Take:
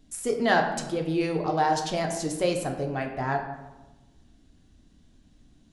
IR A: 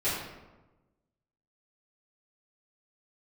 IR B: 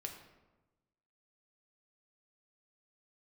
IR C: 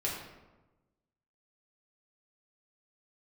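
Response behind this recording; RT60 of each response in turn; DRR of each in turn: B; 1.1 s, 1.1 s, 1.1 s; -14.5 dB, 2.5 dB, -5.0 dB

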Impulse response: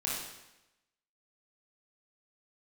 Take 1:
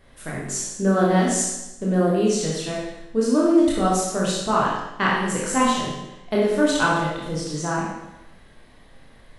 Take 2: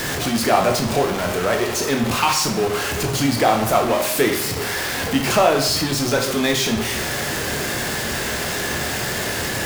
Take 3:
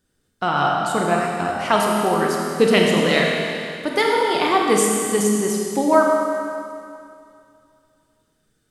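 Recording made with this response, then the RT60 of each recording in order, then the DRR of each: 1; 0.95 s, 0.70 s, 2.4 s; -5.5 dB, 2.0 dB, -1.5 dB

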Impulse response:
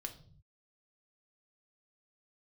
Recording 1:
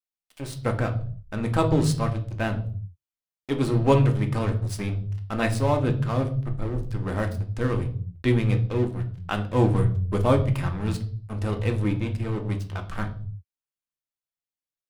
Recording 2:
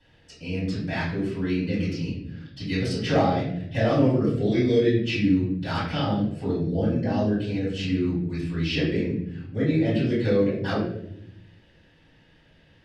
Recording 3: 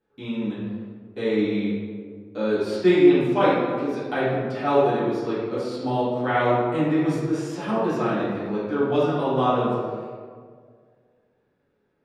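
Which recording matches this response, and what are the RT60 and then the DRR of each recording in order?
1; 0.45 s, 0.75 s, 1.9 s; 4.5 dB, -11.5 dB, -13.5 dB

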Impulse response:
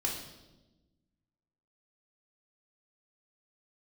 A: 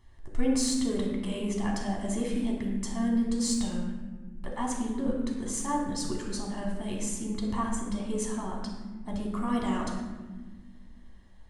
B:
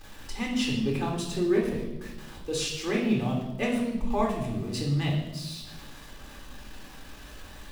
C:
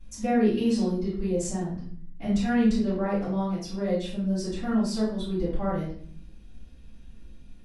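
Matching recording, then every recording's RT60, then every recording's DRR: B; no single decay rate, 1.1 s, 0.55 s; -2.5 dB, -2.5 dB, -13.5 dB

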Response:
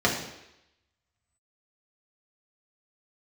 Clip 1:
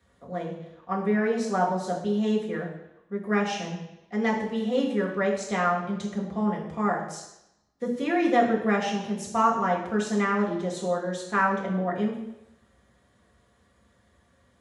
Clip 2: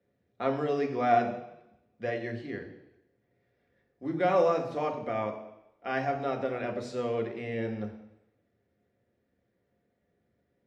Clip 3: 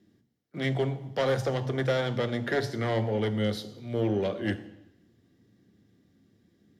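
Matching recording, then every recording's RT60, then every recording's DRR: 1; 0.85 s, 0.85 s, 0.85 s; -3.5 dB, 3.0 dB, 8.5 dB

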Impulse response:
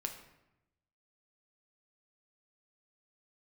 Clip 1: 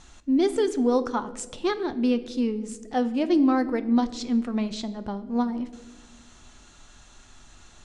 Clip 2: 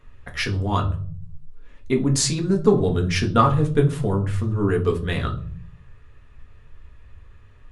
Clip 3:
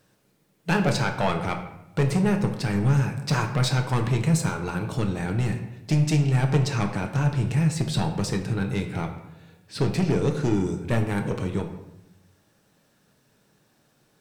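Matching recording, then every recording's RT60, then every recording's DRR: 3; 1.8 s, 0.45 s, 0.90 s; 10.5 dB, 1.0 dB, 3.5 dB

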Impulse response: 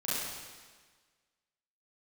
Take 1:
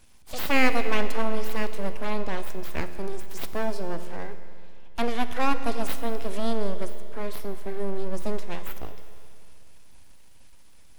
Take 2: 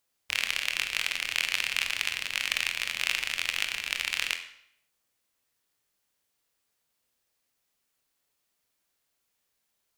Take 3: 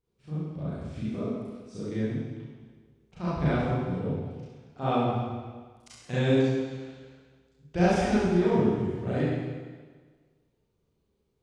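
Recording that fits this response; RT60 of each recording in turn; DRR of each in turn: 3; 2.6 s, 0.70 s, 1.5 s; 9.0 dB, 6.0 dB, -11.0 dB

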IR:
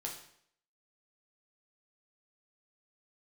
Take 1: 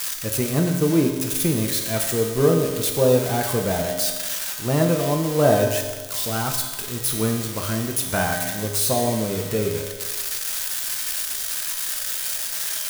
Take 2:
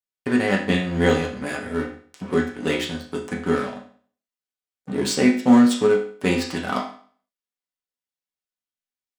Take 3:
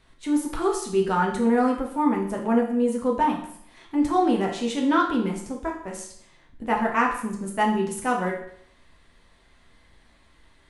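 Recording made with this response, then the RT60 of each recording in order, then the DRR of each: 3; 1.4 s, 0.50 s, 0.65 s; 1.0 dB, -2.5 dB, -1.0 dB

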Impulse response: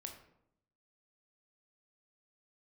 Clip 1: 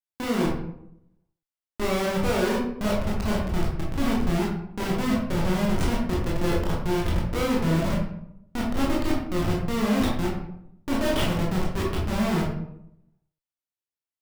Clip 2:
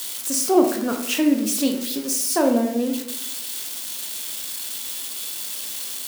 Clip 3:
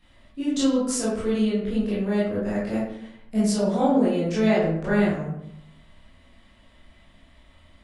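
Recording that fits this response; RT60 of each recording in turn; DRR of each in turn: 2; 0.75 s, 0.75 s, 0.75 s; -4.0 dB, 3.5 dB, -10.0 dB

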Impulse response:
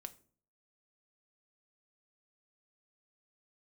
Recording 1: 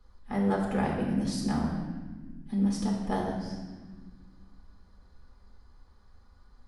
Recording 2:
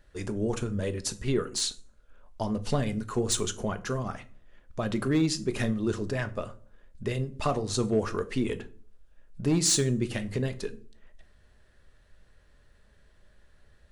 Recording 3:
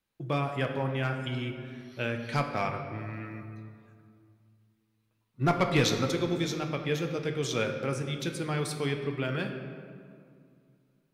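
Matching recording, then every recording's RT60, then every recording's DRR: 2; 1.5 s, 0.45 s, 2.3 s; -4.0 dB, 9.0 dB, 4.0 dB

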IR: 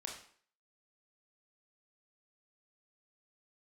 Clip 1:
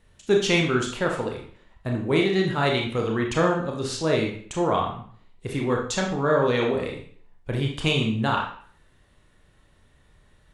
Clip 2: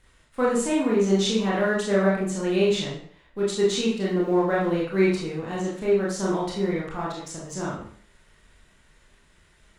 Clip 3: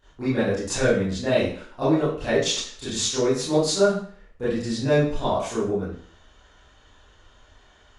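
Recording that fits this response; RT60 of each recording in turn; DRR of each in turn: 1; 0.50 s, 0.50 s, 0.50 s; 0.0 dB, -5.5 dB, -14.5 dB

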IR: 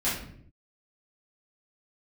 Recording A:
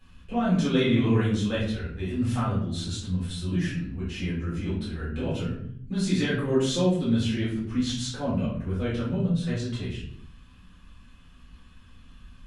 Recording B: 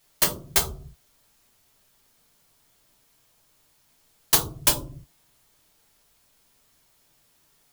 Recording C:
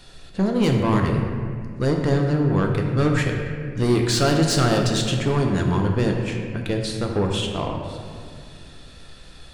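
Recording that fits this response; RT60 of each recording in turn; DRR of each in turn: A; 0.60 s, 0.45 s, 2.1 s; -10.0 dB, -1.0 dB, 1.5 dB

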